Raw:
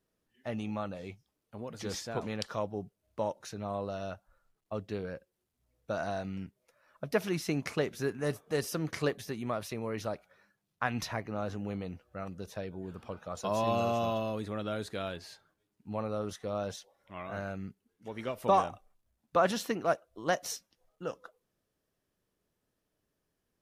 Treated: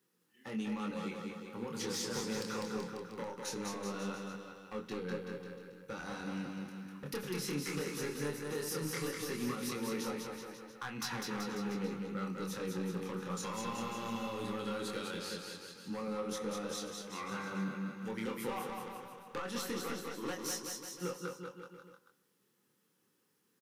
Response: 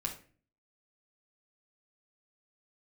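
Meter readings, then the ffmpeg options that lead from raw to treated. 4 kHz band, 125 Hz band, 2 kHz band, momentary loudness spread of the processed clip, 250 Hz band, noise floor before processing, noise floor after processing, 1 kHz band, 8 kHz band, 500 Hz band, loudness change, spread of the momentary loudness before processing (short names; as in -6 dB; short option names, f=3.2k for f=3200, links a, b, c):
+0.5 dB, -5.0 dB, -3.0 dB, 8 LU, -1.0 dB, -83 dBFS, -76 dBFS, -7.5 dB, +3.0 dB, -6.5 dB, -4.5 dB, 15 LU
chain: -filter_complex "[0:a]highpass=f=150:w=0.5412,highpass=f=150:w=1.3066,highshelf=f=10k:g=7.5,acompressor=threshold=-38dB:ratio=6,asoftclip=type=hard:threshold=-36dB,flanger=delay=22.5:depth=5:speed=0.19,asuperstop=centerf=650:order=4:qfactor=2.5,aecho=1:1:200|380|542|687.8|819:0.631|0.398|0.251|0.158|0.1,asplit=2[a][b];[1:a]atrim=start_sample=2205,asetrate=22932,aresample=44100[c];[b][c]afir=irnorm=-1:irlink=0,volume=-13dB[d];[a][d]amix=inputs=2:normalize=0,volume=5dB"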